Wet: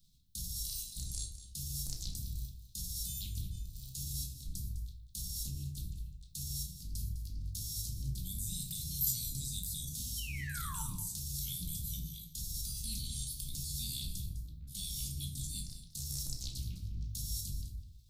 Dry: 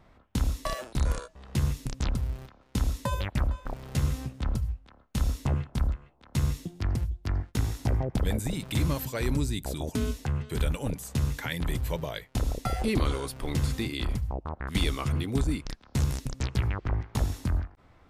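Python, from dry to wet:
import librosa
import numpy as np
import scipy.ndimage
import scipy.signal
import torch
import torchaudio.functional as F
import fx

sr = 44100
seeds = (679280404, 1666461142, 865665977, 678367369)

y = scipy.signal.sosfilt(scipy.signal.ellip(3, 1.0, 40, [170.0, 4000.0], 'bandstop', fs=sr, output='sos'), x)
y = librosa.effects.preemphasis(y, coef=0.9, zi=[0.0])
y = fx.transient(y, sr, attack_db=-7, sustain_db=6)
y = fx.level_steps(y, sr, step_db=10)
y = fx.spec_paint(y, sr, seeds[0], shape='fall', start_s=10.17, length_s=0.65, low_hz=860.0, high_hz=3200.0, level_db=-56.0)
y = y + 10.0 ** (-13.5 / 20.0) * np.pad(y, (int(205 * sr / 1000.0), 0))[:len(y)]
y = fx.room_shoebox(y, sr, seeds[1], volume_m3=470.0, walls='furnished', distance_m=2.3)
y = y * 10.0 ** (7.0 / 20.0)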